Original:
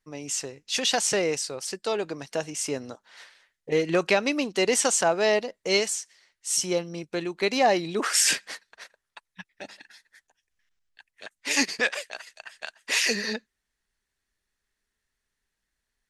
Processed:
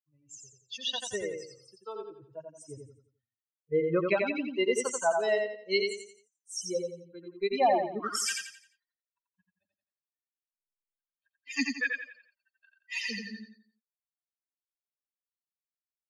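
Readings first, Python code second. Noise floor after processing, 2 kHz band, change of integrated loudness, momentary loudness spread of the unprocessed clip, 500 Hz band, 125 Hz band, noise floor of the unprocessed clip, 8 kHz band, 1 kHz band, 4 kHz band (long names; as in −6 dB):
below −85 dBFS, −6.5 dB, −5.5 dB, 18 LU, −4.5 dB, −6.5 dB, −83 dBFS, −12.5 dB, −3.5 dB, −9.0 dB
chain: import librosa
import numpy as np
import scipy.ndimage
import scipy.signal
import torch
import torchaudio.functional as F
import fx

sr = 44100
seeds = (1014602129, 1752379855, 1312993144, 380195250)

p1 = fx.bin_expand(x, sr, power=3.0)
p2 = fx.high_shelf(p1, sr, hz=5900.0, db=-11.0)
y = p2 + fx.echo_feedback(p2, sr, ms=87, feedback_pct=36, wet_db=-4, dry=0)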